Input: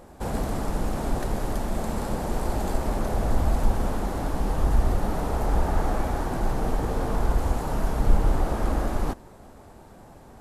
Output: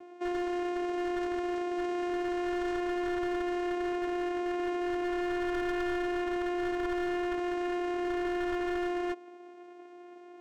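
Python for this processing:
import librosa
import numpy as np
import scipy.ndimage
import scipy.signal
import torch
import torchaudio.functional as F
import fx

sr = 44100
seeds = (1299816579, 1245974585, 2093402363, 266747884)

y = fx.vocoder(x, sr, bands=4, carrier='saw', carrier_hz=353.0)
y = 10.0 ** (-26.0 / 20.0) * (np.abs((y / 10.0 ** (-26.0 / 20.0) + 3.0) % 4.0 - 2.0) - 1.0)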